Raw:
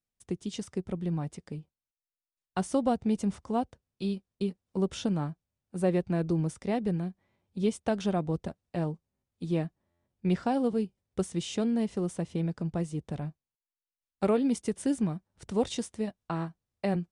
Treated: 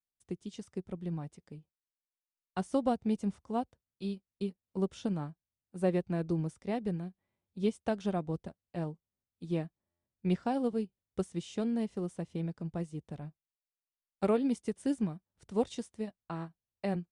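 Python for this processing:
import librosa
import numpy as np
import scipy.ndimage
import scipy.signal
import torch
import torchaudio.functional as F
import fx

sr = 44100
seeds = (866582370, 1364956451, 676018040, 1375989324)

y = fx.upward_expand(x, sr, threshold_db=-41.0, expansion=1.5)
y = y * librosa.db_to_amplitude(-2.0)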